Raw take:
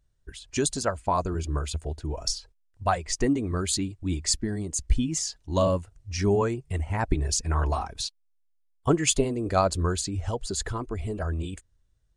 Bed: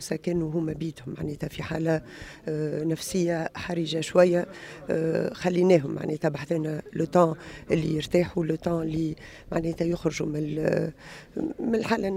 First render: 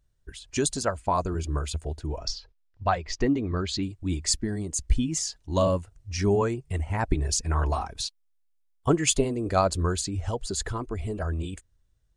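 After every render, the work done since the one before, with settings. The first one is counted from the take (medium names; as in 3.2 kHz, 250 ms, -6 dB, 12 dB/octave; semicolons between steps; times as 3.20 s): 2.18–3.83 s: low-pass 5.3 kHz 24 dB/octave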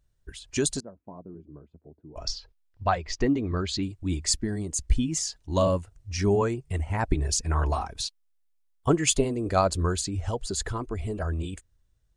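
0.80–2.16 s: ladder band-pass 250 Hz, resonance 30%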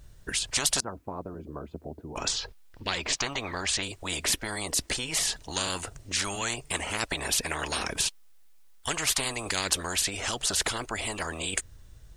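spectrum-flattening compressor 10:1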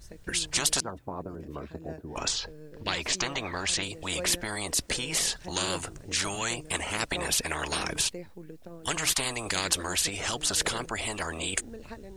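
add bed -19 dB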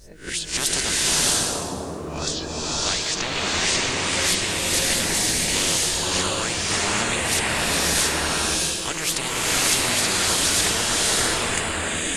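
reverse spectral sustain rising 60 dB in 0.31 s; swelling reverb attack 650 ms, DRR -6 dB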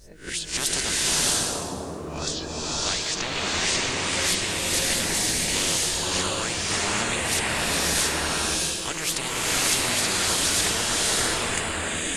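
trim -2.5 dB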